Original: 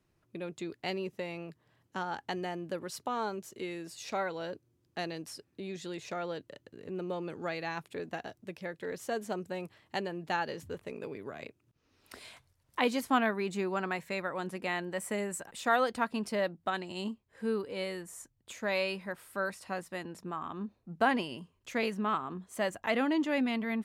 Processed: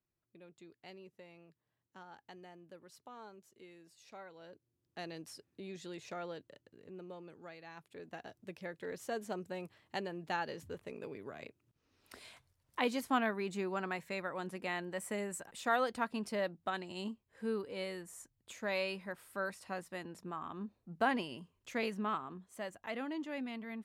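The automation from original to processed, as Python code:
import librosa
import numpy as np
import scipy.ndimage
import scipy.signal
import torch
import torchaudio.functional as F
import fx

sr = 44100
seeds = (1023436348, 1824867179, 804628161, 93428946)

y = fx.gain(x, sr, db=fx.line((4.3, -17.5), (5.17, -6.0), (6.22, -6.0), (7.62, -16.0), (8.45, -4.5), (22.05, -4.5), (22.65, -11.0)))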